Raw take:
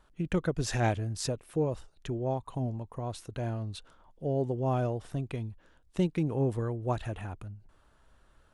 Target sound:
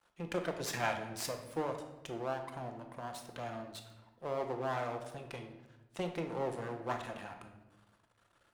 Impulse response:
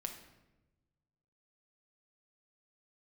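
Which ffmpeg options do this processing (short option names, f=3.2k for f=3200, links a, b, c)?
-filter_complex "[0:a]aeval=exprs='max(val(0),0)':c=same,highpass=f=410:p=1[a];[1:a]atrim=start_sample=2205[b];[a][b]afir=irnorm=-1:irlink=0,volume=3.5dB"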